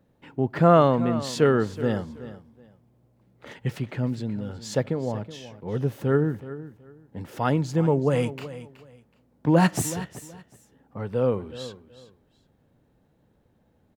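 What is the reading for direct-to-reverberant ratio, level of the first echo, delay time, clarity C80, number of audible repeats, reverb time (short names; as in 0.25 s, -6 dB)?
none, -15.0 dB, 0.374 s, none, 2, none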